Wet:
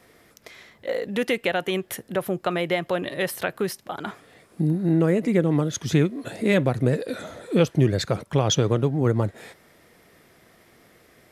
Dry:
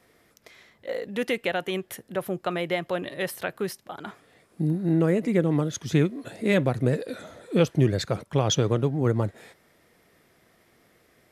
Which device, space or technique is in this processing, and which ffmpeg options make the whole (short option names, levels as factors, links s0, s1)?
parallel compression: -filter_complex "[0:a]asplit=2[s0][s1];[s1]acompressor=threshold=0.0282:ratio=6,volume=1[s2];[s0][s2]amix=inputs=2:normalize=0"